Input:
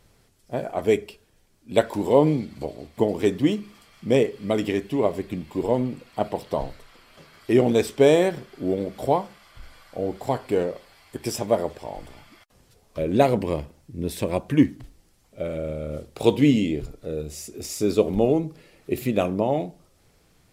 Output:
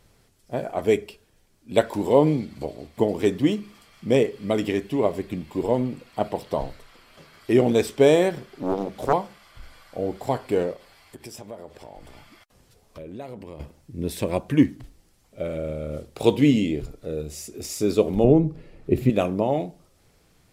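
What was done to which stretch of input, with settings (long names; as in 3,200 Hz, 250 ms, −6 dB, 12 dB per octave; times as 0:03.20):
0:08.53–0:09.13: highs frequency-modulated by the lows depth 0.74 ms
0:10.73–0:13.60: downward compressor 3 to 1, threshold −40 dBFS
0:18.24–0:19.10: spectral tilt −3 dB per octave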